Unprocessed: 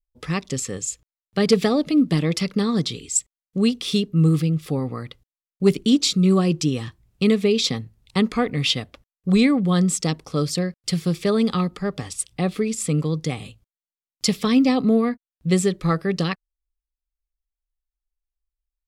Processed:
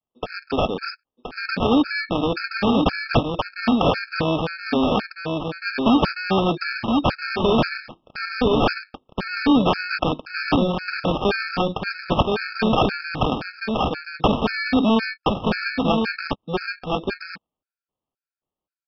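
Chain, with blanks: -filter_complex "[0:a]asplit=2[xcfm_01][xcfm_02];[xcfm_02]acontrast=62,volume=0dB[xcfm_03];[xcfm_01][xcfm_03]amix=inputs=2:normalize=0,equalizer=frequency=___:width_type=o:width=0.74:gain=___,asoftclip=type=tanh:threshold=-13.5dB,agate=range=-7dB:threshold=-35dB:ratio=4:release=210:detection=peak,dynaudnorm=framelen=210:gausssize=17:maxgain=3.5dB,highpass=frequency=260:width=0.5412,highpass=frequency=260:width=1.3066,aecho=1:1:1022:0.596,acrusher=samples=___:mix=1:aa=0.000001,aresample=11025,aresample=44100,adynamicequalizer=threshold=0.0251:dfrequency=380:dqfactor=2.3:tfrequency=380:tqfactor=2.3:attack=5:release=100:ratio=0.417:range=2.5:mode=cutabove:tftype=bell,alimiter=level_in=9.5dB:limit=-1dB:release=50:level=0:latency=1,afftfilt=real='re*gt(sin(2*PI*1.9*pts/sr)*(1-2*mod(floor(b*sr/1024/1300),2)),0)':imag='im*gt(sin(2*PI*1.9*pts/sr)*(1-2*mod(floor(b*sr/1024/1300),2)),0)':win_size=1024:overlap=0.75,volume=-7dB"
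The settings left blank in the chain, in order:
670, -10.5, 22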